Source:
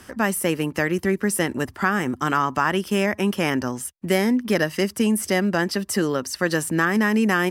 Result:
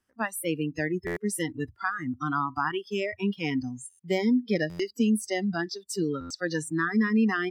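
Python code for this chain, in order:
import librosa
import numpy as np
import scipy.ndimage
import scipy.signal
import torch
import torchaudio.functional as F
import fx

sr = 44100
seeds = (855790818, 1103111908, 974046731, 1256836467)

y = fx.noise_reduce_blind(x, sr, reduce_db=27)
y = fx.dynamic_eq(y, sr, hz=210.0, q=1.3, threshold_db=-34.0, ratio=4.0, max_db=5)
y = fx.buffer_glitch(y, sr, at_s=(1.06, 3.89, 4.69, 6.2), block=512, repeats=8)
y = y * librosa.db_to_amplitude(-6.5)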